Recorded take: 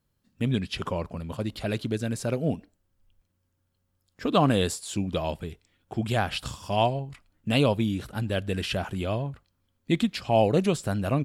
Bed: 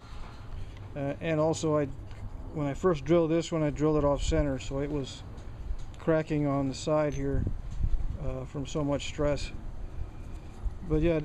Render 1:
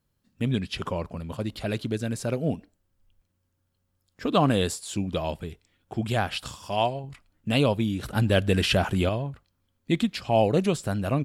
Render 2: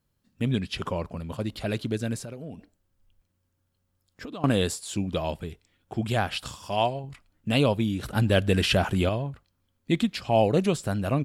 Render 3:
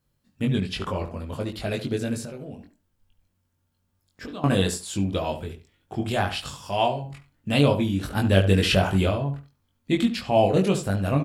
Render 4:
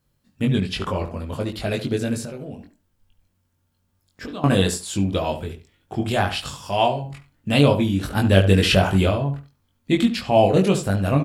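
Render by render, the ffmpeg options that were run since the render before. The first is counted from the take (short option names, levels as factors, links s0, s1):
-filter_complex "[0:a]asettb=1/sr,asplit=3[s0][s1][s2];[s0]atrim=end=6.274[s3];[s1]atrim=start=6.27:end=7.04,asetpts=PTS-STARTPTS,afade=t=in:d=0.004:c=qsin,afade=t=out:st=0.766:d=0.004:c=qsin,lowshelf=f=270:g=-6.5[s4];[s2]atrim=start=7.036[s5];[s3][s4]acrossfade=d=0.004:c1=hsin:c2=qsin[s6];[s6][s5]acrossfade=d=0.004:c1=qsin:c2=hsin,asettb=1/sr,asplit=3[s7][s8][s9];[s7]atrim=end=8.034[s10];[s8]atrim=start=8.03:end=9.09,asetpts=PTS-STARTPTS,afade=t=in:d=0.004:c=qsin,afade=t=out:st=1.056:d=0.004:c=qsin,acontrast=69[s11];[s9]atrim=start=9.086[s12];[s10][s11]acrossfade=d=0.004:c1=hsin:c2=qsin[s13];[s13][s12]acrossfade=d=0.004:c1=qsin:c2=hsin"
-filter_complex "[0:a]asettb=1/sr,asplit=3[s0][s1][s2];[s0]atrim=end=2.184[s3];[s1]atrim=start=2.18:end=4.44,asetpts=PTS-STARTPTS,afade=t=in:d=0.004:c=qsin,afade=t=out:st=2.256:d=0.004:c=qsin,acompressor=threshold=0.0178:ratio=6:attack=3.2:release=140:knee=1:detection=peak[s4];[s2]atrim=start=4.436[s5];[s3][s4]acrossfade=d=0.004:c1=hsin:c2=qsin[s6];[s6][s5]acrossfade=d=0.004:c1=qsin:c2=hsin"
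-filter_complex "[0:a]asplit=2[s0][s1];[s1]adelay=21,volume=0.708[s2];[s0][s2]amix=inputs=2:normalize=0,asplit=2[s3][s4];[s4]adelay=71,lowpass=f=2000:p=1,volume=0.316,asplit=2[s5][s6];[s6]adelay=71,lowpass=f=2000:p=1,volume=0.21,asplit=2[s7][s8];[s8]adelay=71,lowpass=f=2000:p=1,volume=0.21[s9];[s5][s7][s9]amix=inputs=3:normalize=0[s10];[s3][s10]amix=inputs=2:normalize=0"
-af "volume=1.5"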